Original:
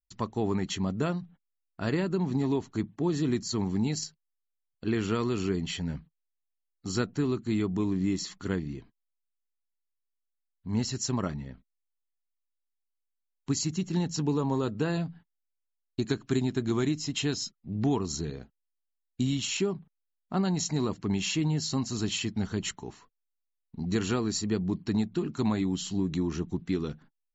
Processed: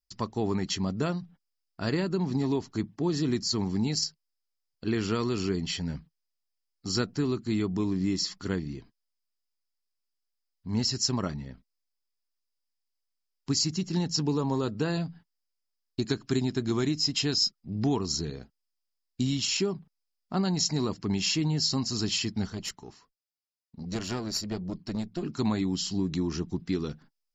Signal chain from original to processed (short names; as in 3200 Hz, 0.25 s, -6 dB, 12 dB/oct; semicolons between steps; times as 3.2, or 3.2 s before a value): 22.5–25.23 tube stage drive 21 dB, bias 0.8; bell 5000 Hz +14.5 dB 0.29 oct